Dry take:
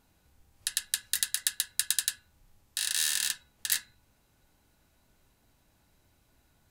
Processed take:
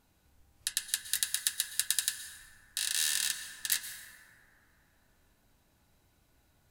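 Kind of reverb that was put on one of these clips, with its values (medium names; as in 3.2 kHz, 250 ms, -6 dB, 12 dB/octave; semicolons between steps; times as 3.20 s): plate-style reverb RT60 3.2 s, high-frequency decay 0.3×, pre-delay 105 ms, DRR 7.5 dB; trim -2 dB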